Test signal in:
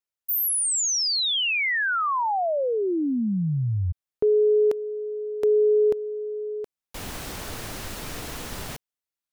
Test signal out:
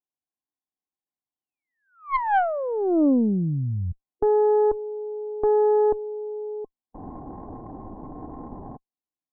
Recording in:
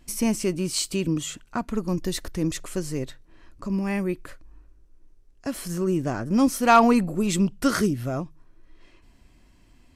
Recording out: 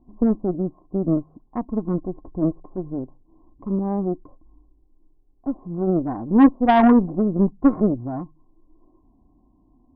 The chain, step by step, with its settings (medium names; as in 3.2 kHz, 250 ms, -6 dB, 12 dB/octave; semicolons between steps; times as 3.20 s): rippled Chebyshev low-pass 1.1 kHz, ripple 9 dB; harmonic-percussive split harmonic +3 dB; Chebyshev shaper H 3 -19 dB, 5 -29 dB, 6 -20 dB, 7 -32 dB, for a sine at -8.5 dBFS; trim +6 dB